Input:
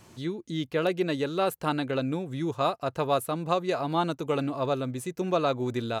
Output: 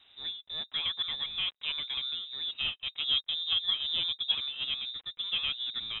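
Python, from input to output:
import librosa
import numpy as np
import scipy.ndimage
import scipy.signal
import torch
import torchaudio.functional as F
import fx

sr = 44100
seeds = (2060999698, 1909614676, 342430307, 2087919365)

y = fx.dead_time(x, sr, dead_ms=0.11)
y = fx.graphic_eq(y, sr, hz=(125, 500, 1000), db=(7, 9, -10), at=(3.04, 4.32))
y = fx.freq_invert(y, sr, carrier_hz=3800)
y = y * librosa.db_to_amplitude(-6.5)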